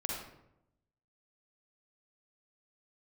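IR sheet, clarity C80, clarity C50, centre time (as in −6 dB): 4.0 dB, −0.5 dB, 59 ms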